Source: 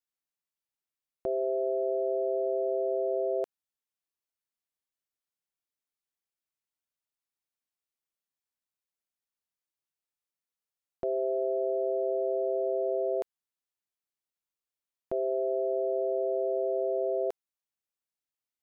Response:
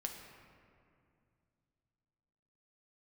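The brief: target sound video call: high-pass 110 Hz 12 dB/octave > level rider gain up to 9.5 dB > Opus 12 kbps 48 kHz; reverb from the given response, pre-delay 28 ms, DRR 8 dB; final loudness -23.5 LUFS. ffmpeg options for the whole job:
-filter_complex "[0:a]asplit=2[s0][s1];[1:a]atrim=start_sample=2205,adelay=28[s2];[s1][s2]afir=irnorm=-1:irlink=0,volume=0.447[s3];[s0][s3]amix=inputs=2:normalize=0,highpass=110,dynaudnorm=m=2.99,volume=1.78" -ar 48000 -c:a libopus -b:a 12k

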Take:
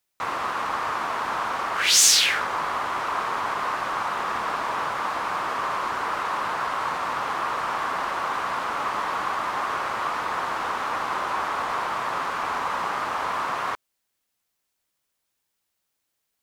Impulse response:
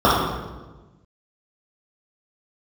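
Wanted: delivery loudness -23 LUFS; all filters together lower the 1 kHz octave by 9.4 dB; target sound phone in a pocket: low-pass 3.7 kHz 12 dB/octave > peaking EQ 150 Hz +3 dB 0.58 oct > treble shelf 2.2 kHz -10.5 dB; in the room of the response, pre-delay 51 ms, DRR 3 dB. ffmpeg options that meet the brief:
-filter_complex "[0:a]equalizer=f=1000:t=o:g=-9,asplit=2[s0][s1];[1:a]atrim=start_sample=2205,adelay=51[s2];[s1][s2]afir=irnorm=-1:irlink=0,volume=0.0299[s3];[s0][s3]amix=inputs=2:normalize=0,lowpass=3700,equalizer=f=150:t=o:w=0.58:g=3,highshelf=f=2200:g=-10.5,volume=2.82"

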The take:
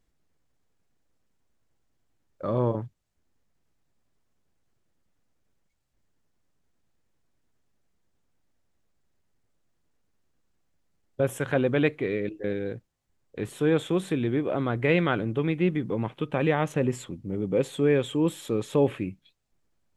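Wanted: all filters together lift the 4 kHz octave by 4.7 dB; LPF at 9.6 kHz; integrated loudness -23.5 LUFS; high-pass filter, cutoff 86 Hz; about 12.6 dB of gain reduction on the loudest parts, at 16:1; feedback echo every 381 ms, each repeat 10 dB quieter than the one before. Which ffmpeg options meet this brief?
-af "highpass=86,lowpass=9600,equalizer=f=4000:t=o:g=6,acompressor=threshold=0.0316:ratio=16,aecho=1:1:381|762|1143|1524:0.316|0.101|0.0324|0.0104,volume=4.47"

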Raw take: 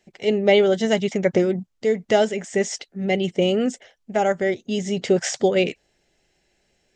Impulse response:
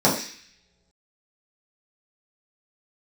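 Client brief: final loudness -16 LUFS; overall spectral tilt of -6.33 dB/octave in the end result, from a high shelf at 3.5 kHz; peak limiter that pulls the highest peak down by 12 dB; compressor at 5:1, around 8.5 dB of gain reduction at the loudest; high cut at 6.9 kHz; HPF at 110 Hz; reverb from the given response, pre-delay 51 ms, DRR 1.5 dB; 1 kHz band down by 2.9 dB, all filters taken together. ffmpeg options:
-filter_complex "[0:a]highpass=110,lowpass=6900,equalizer=f=1000:t=o:g=-4,highshelf=f=3500:g=-3.5,acompressor=threshold=0.0794:ratio=5,alimiter=limit=0.0668:level=0:latency=1,asplit=2[s0][s1];[1:a]atrim=start_sample=2205,adelay=51[s2];[s1][s2]afir=irnorm=-1:irlink=0,volume=0.0891[s3];[s0][s3]amix=inputs=2:normalize=0,volume=3.98"

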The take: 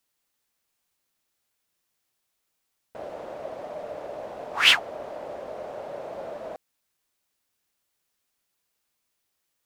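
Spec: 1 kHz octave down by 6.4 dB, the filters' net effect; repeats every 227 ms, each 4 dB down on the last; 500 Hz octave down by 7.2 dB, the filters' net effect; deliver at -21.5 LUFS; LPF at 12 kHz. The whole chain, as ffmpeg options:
-af "lowpass=12000,equalizer=f=500:t=o:g=-6.5,equalizer=f=1000:t=o:g=-7,aecho=1:1:227|454|681|908|1135|1362|1589|1816|2043:0.631|0.398|0.25|0.158|0.0994|0.0626|0.0394|0.0249|0.0157,volume=1.19"

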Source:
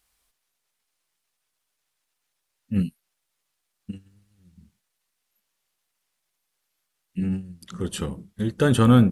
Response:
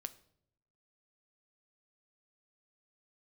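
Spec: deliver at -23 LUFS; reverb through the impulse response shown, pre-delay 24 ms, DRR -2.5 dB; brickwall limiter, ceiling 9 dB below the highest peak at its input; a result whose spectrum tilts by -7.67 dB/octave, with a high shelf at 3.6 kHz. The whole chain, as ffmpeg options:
-filter_complex "[0:a]highshelf=f=3600:g=-6.5,alimiter=limit=0.211:level=0:latency=1,asplit=2[s0][s1];[1:a]atrim=start_sample=2205,adelay=24[s2];[s1][s2]afir=irnorm=-1:irlink=0,volume=1.88[s3];[s0][s3]amix=inputs=2:normalize=0,volume=1.06"

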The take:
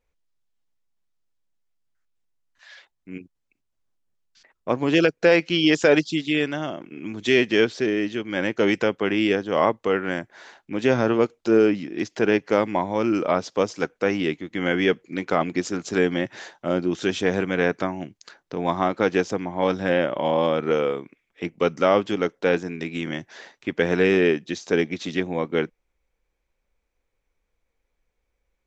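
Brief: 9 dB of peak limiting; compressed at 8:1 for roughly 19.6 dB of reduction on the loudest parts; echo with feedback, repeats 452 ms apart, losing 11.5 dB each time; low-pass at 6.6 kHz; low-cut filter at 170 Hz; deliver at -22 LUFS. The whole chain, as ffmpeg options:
-af "highpass=170,lowpass=6600,acompressor=threshold=0.02:ratio=8,alimiter=level_in=1.58:limit=0.0631:level=0:latency=1,volume=0.631,aecho=1:1:452|904|1356:0.266|0.0718|0.0194,volume=7.94"

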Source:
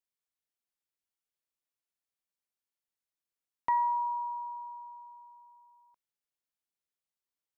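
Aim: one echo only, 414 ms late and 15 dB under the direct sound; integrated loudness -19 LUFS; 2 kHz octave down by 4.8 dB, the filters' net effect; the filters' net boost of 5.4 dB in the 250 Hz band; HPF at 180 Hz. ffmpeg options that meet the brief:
-af "highpass=180,equalizer=f=250:t=o:g=8,equalizer=f=2000:t=o:g=-5,aecho=1:1:414:0.178,volume=5.31"

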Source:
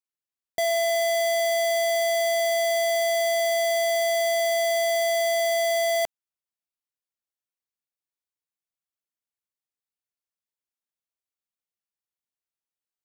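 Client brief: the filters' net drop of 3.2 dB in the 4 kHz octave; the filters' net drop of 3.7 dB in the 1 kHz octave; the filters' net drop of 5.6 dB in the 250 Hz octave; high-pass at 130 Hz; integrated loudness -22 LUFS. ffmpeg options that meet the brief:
-af "highpass=130,equalizer=f=250:t=o:g=-6.5,equalizer=f=1000:t=o:g=-7,equalizer=f=4000:t=o:g=-3.5,volume=1.58"

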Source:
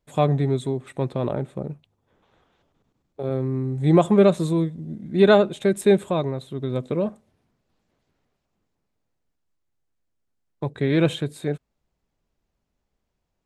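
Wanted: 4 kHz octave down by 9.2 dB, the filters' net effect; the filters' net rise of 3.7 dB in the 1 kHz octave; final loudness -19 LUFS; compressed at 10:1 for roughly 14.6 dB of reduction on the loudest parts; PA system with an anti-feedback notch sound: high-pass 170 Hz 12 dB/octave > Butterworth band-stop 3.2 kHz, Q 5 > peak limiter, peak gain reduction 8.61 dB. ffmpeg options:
-af "equalizer=f=1000:t=o:g=5.5,equalizer=f=4000:t=o:g=-7.5,acompressor=threshold=0.0562:ratio=10,highpass=170,asuperstop=centerf=3200:order=8:qfactor=5,volume=5.62,alimiter=limit=0.473:level=0:latency=1"

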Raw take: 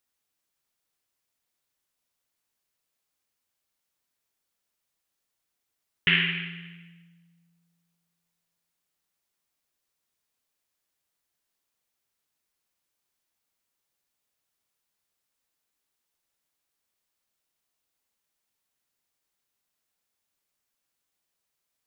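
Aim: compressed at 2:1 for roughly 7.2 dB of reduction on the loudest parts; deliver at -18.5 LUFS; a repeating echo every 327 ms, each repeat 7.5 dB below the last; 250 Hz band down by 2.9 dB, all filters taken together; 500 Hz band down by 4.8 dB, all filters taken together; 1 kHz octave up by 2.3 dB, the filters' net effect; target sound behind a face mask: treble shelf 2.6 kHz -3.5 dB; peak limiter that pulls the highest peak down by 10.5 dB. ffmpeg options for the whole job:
-af "equalizer=f=250:t=o:g=-5.5,equalizer=f=500:t=o:g=-5,equalizer=f=1000:t=o:g=5.5,acompressor=threshold=0.0316:ratio=2,alimiter=limit=0.0891:level=0:latency=1,highshelf=f=2600:g=-3.5,aecho=1:1:327|654|981|1308|1635:0.422|0.177|0.0744|0.0312|0.0131,volume=8.91"

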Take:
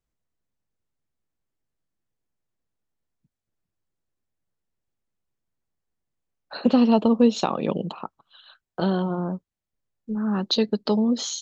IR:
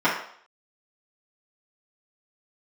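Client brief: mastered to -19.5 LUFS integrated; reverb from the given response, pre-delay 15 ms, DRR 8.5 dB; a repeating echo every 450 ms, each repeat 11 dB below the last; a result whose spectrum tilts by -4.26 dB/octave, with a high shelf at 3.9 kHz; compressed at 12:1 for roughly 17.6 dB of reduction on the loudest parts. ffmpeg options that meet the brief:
-filter_complex "[0:a]highshelf=f=3900:g=6,acompressor=threshold=0.0282:ratio=12,aecho=1:1:450|900|1350:0.282|0.0789|0.0221,asplit=2[s0][s1];[1:a]atrim=start_sample=2205,adelay=15[s2];[s1][s2]afir=irnorm=-1:irlink=0,volume=0.0447[s3];[s0][s3]amix=inputs=2:normalize=0,volume=6.68"

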